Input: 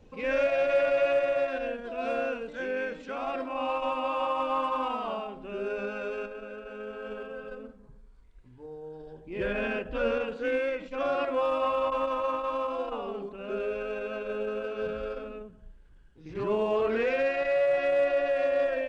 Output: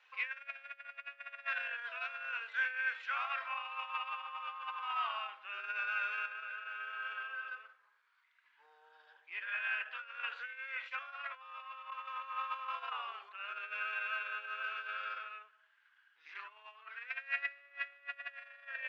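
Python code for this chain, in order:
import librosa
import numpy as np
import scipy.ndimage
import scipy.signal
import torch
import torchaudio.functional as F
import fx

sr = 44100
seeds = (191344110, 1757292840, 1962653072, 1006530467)

y = scipy.signal.sosfilt(scipy.signal.butter(2, 2400.0, 'lowpass', fs=sr, output='sos'), x)
y = fx.over_compress(y, sr, threshold_db=-33.0, ratio=-0.5)
y = scipy.signal.sosfilt(scipy.signal.butter(4, 1400.0, 'highpass', fs=sr, output='sos'), y)
y = y * librosa.db_to_amplitude(4.5)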